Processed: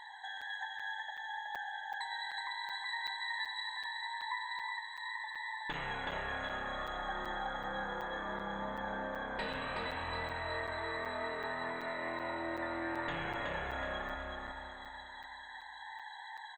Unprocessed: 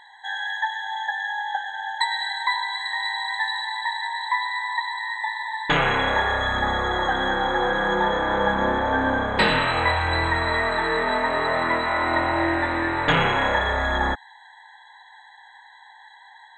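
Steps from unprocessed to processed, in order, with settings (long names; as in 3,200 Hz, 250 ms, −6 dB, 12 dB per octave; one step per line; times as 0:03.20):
downward compressor 3 to 1, threshold −42 dBFS, peak gain reduction 19.5 dB
flanger 0.69 Hz, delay 1 ms, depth 1.1 ms, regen +62%
repeating echo 372 ms, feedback 41%, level −3 dB
on a send at −7 dB: convolution reverb RT60 1.7 s, pre-delay 3 ms
on the sum: regular buffer underruns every 0.38 s, samples 256, zero, from 0:00.41
level +1 dB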